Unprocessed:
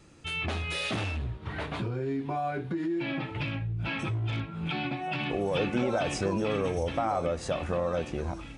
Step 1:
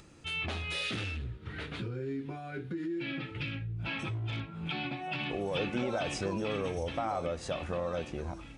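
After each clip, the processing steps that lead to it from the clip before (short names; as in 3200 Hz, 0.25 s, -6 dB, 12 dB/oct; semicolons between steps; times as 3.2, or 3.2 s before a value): spectral gain 0.83–3.73, 550–1200 Hz -9 dB; dynamic EQ 3500 Hz, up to +4 dB, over -45 dBFS, Q 0.93; upward compressor, threshold -45 dBFS; gain -5 dB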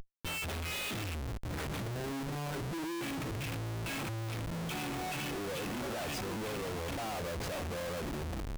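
Schmitt trigger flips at -43 dBFS; gain -1.5 dB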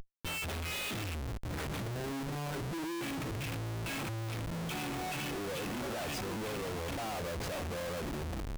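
nothing audible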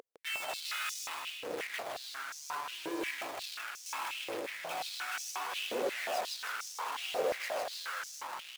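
phaser 0.69 Hz, delay 1.5 ms, feedback 29%; feedback echo 0.157 s, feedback 55%, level -3 dB; stepped high-pass 5.6 Hz 470–5900 Hz; gain -3.5 dB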